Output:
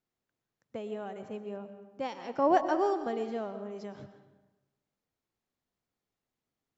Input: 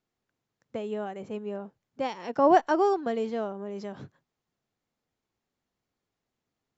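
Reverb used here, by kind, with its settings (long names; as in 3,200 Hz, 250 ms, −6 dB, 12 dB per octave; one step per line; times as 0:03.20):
comb and all-pass reverb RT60 1.1 s, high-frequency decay 0.75×, pre-delay 80 ms, DRR 9.5 dB
level −5 dB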